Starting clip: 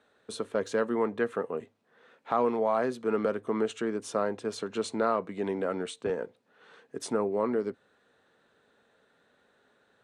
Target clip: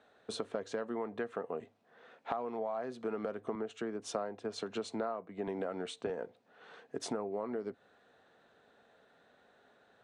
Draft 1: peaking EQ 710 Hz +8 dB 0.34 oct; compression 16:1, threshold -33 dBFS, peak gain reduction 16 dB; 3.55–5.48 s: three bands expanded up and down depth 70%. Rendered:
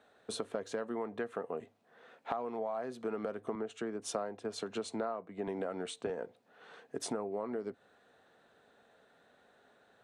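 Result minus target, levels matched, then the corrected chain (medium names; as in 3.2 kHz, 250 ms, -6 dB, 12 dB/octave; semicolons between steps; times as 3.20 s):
8 kHz band +3.5 dB
low-pass 7.1 kHz 12 dB/octave; peaking EQ 710 Hz +8 dB 0.34 oct; compression 16:1, threshold -33 dBFS, peak gain reduction 16 dB; 3.55–5.48 s: three bands expanded up and down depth 70%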